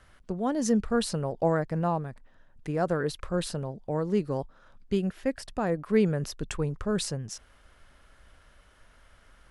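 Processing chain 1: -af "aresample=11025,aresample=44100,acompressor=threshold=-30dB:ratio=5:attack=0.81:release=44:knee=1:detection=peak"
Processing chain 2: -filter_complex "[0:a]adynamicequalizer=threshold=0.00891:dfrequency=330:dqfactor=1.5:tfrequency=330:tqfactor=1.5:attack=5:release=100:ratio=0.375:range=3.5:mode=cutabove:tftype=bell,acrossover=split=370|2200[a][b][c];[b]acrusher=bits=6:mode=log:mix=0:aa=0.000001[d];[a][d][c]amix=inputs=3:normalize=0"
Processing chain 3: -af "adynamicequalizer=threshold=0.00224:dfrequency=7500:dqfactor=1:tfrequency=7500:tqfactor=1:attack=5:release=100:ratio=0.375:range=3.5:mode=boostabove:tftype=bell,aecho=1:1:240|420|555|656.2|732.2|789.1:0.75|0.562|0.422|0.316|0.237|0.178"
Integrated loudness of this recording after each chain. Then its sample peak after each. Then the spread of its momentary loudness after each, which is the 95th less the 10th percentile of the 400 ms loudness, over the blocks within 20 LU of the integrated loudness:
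-36.5, -30.5, -26.0 LUFS; -21.5, -13.0, -10.5 dBFS; 6, 9, 7 LU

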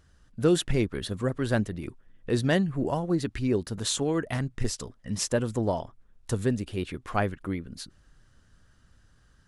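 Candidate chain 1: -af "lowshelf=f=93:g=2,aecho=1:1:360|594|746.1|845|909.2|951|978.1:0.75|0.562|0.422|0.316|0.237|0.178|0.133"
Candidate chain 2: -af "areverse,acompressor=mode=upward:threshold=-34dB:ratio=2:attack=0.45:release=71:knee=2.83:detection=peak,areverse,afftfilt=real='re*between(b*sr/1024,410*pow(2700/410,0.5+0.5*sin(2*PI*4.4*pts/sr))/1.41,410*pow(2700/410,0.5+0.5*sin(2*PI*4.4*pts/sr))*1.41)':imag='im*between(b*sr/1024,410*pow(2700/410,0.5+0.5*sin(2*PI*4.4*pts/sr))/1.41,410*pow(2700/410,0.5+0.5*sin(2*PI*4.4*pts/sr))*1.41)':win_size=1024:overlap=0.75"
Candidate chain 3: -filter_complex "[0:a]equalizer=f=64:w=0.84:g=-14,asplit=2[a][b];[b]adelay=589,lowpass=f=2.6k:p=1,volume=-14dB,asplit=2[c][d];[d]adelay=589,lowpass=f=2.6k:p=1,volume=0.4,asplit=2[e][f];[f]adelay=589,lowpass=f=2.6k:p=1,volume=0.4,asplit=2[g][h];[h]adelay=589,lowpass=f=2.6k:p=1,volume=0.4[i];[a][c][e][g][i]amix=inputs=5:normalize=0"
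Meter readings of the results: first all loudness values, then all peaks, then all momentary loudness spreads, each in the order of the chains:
-25.5, -38.0, -30.5 LUFS; -9.0, -17.5, -10.0 dBFS; 6, 18, 14 LU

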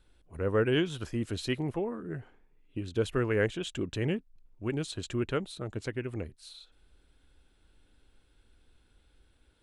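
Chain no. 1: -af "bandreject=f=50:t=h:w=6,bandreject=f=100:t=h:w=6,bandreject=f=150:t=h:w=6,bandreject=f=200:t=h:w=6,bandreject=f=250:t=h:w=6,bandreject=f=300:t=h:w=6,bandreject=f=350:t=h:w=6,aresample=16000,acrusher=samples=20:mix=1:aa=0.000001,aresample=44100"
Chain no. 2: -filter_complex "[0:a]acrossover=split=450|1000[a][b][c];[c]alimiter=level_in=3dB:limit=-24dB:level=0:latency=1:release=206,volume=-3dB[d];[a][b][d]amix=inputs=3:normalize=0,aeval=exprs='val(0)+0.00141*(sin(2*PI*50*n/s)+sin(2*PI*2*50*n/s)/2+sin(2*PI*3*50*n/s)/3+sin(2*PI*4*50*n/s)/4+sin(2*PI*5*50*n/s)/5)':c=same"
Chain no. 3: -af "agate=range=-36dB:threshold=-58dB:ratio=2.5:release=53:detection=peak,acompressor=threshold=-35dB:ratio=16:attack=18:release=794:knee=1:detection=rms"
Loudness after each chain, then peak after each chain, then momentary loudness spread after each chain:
-33.5, -33.0, -43.5 LUFS; -15.0, -15.5, -27.0 dBFS; 13, 14, 7 LU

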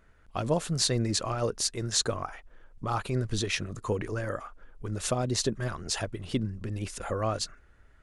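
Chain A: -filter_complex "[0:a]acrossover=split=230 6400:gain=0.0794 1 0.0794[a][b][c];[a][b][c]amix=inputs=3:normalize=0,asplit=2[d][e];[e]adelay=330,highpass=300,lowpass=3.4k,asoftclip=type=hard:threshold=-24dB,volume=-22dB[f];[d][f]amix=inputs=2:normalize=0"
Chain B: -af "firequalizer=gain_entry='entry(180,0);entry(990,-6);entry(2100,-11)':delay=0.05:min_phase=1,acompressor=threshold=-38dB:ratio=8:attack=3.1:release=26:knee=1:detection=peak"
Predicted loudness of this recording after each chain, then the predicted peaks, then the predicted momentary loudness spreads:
-33.5, -42.0 LUFS; -14.0, -26.5 dBFS; 11, 6 LU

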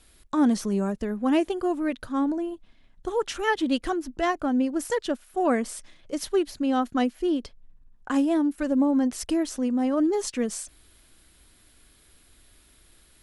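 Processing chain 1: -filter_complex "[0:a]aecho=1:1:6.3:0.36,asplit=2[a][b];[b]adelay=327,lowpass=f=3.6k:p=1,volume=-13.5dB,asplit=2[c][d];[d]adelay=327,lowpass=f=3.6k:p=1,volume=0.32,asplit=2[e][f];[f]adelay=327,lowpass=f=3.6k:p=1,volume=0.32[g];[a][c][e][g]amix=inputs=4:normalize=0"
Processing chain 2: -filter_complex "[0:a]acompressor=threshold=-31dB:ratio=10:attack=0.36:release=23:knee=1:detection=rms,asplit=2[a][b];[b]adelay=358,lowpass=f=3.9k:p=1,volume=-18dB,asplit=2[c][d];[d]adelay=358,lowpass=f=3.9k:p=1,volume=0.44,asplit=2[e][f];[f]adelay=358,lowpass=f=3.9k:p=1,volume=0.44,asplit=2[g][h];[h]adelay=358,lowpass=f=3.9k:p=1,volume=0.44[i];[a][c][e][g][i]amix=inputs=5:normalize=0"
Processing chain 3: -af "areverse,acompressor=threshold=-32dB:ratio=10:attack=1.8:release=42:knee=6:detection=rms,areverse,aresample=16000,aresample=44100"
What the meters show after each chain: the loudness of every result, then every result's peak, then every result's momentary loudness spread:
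-25.5, -36.5, -37.0 LUFS; -9.5, -25.5, -25.5 dBFS; 12, 9, 6 LU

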